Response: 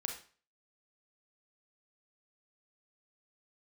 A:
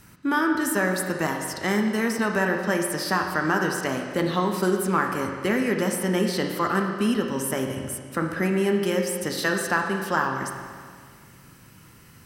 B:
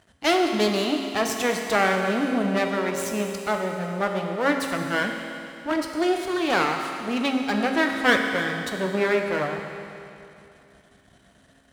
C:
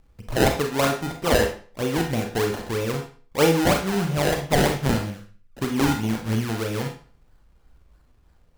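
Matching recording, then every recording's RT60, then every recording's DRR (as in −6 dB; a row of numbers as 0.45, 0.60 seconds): C; 1.9, 2.8, 0.40 seconds; 2.5, 3.0, 2.5 decibels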